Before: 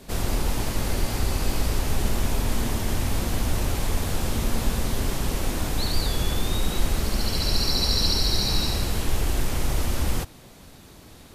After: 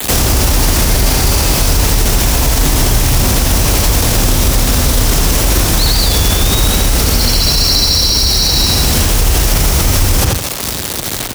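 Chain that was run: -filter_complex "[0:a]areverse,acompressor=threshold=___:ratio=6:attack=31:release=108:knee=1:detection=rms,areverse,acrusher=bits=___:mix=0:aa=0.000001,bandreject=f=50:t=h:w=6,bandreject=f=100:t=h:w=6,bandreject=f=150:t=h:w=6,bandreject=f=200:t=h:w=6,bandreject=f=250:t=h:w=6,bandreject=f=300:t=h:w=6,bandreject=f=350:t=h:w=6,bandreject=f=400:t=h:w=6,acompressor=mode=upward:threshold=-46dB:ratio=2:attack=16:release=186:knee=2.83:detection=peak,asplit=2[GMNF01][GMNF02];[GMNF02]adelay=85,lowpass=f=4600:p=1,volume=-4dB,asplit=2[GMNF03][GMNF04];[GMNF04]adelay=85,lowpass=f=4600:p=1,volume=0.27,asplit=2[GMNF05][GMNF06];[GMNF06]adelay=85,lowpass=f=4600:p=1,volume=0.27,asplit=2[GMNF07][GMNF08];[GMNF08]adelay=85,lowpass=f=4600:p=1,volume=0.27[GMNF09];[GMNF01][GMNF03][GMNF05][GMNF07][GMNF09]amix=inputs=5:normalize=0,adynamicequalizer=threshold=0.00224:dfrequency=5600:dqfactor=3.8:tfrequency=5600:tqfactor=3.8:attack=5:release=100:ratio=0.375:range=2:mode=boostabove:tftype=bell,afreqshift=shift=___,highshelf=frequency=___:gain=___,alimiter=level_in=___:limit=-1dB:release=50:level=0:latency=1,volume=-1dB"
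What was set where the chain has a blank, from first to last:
-30dB, 6, 24, 3800, 6, 25dB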